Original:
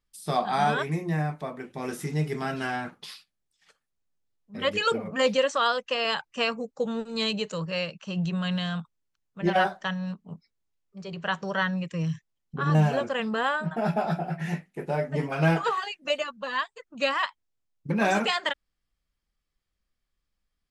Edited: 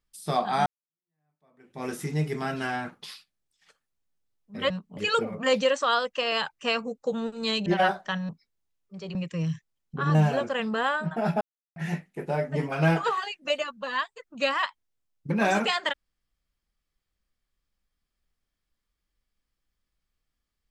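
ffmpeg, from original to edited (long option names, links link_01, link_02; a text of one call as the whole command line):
ffmpeg -i in.wav -filter_complex "[0:a]asplit=9[link_01][link_02][link_03][link_04][link_05][link_06][link_07][link_08][link_09];[link_01]atrim=end=0.66,asetpts=PTS-STARTPTS,afade=type=out:start_time=0.656:duration=0.004:curve=hsin[link_10];[link_02]atrim=start=0.66:end=4.702,asetpts=PTS-STARTPTS,afade=type=in:duration=1.16:curve=exp[link_11];[link_03]atrim=start=10.048:end=10.322[link_12];[link_04]atrim=start=4.698:end=7.392[link_13];[link_05]atrim=start=9.418:end=10.052[link_14];[link_06]atrim=start=10.318:end=11.182[link_15];[link_07]atrim=start=11.748:end=14.01,asetpts=PTS-STARTPTS,afade=type=out:start_time=2.258:duration=0.004:curve=hsin[link_16];[link_08]atrim=start=14.01:end=14.36,asetpts=PTS-STARTPTS,volume=0[link_17];[link_09]atrim=start=14.36,asetpts=PTS-STARTPTS,afade=type=in:duration=0.004:curve=hsin[link_18];[link_10][link_11]concat=n=2:v=0:a=1[link_19];[link_19][link_12]acrossfade=duration=0.004:curve1=hsin:curve2=hsin[link_20];[link_20][link_13]acrossfade=duration=0.004:curve1=hsin:curve2=hsin[link_21];[link_21][link_14]acrossfade=duration=0.004:curve1=hsin:curve2=hsin[link_22];[link_22][link_15]acrossfade=duration=0.004:curve1=hsin:curve2=hsin[link_23];[link_16][link_17][link_18]concat=n=3:v=0:a=1[link_24];[link_23][link_24]acrossfade=duration=0.004:curve1=hsin:curve2=hsin" out.wav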